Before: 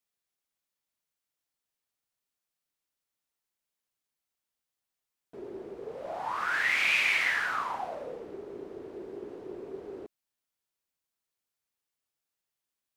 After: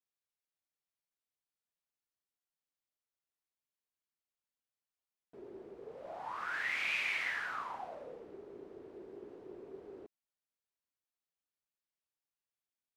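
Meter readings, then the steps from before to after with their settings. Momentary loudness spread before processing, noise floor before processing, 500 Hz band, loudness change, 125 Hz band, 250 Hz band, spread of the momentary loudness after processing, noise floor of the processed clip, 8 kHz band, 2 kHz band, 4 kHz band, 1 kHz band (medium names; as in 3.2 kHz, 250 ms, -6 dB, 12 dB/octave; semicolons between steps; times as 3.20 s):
19 LU, under -85 dBFS, -8.5 dB, -9.0 dB, no reading, -8.5 dB, 19 LU, under -85 dBFS, -11.5 dB, -9.0 dB, -9.5 dB, -8.5 dB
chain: treble shelf 6 kHz -5 dB; trim -8.5 dB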